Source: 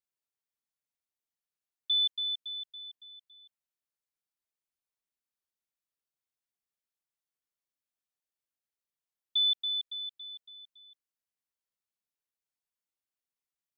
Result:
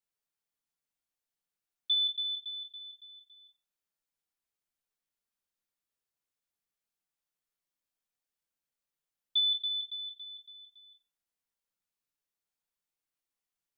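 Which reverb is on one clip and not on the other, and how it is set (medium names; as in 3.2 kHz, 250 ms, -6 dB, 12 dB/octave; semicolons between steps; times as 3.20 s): simulated room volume 31 m³, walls mixed, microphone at 0.31 m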